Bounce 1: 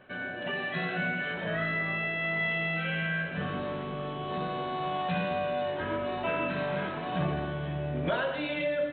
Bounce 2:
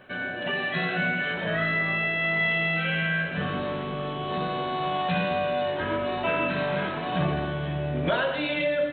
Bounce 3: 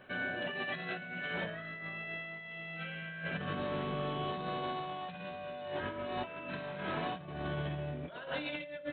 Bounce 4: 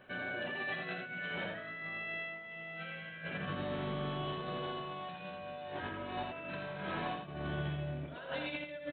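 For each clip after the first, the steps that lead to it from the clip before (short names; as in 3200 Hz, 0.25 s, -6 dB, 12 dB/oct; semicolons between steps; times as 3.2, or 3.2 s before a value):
high shelf 3700 Hz +6 dB; gain +4 dB
negative-ratio compressor -30 dBFS, ratio -0.5; gain -8.5 dB
echo 83 ms -4 dB; gain -2.5 dB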